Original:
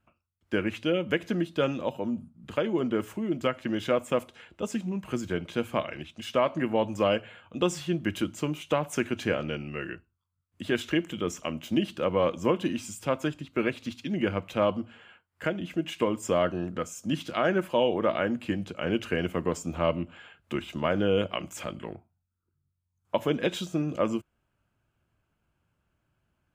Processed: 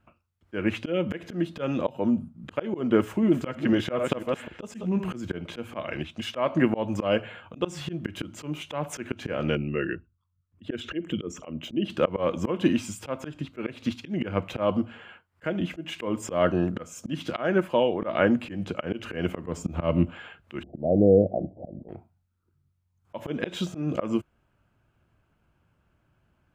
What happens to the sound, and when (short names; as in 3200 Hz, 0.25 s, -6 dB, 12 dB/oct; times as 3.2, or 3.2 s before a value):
2.98–5.12 reverse delay 0.25 s, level -7.5 dB
9.55–11.9 formant sharpening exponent 1.5
17.15–18.02 fade out, to -8.5 dB
19.45–20.1 low shelf 210 Hz +7.5 dB
20.63–21.89 steep low-pass 760 Hz 96 dB/oct
whole clip: high shelf 4000 Hz -9 dB; auto swell 0.206 s; gain +7.5 dB